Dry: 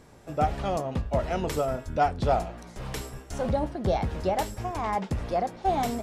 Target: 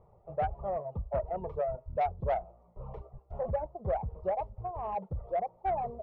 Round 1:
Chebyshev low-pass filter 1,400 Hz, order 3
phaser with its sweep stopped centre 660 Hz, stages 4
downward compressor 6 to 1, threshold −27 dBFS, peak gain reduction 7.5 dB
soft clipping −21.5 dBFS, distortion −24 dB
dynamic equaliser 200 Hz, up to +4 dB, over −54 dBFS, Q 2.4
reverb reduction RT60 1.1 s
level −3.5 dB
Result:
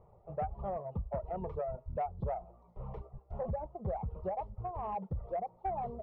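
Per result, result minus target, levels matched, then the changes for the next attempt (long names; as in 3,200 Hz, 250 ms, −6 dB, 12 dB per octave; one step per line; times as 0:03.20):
downward compressor: peak gain reduction +7.5 dB; 250 Hz band +6.0 dB
remove: downward compressor 6 to 1, threshold −27 dBFS, peak gain reduction 7.5 dB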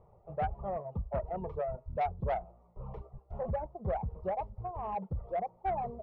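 250 Hz band +4.5 dB
change: dynamic equaliser 600 Hz, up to +4 dB, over −54 dBFS, Q 2.4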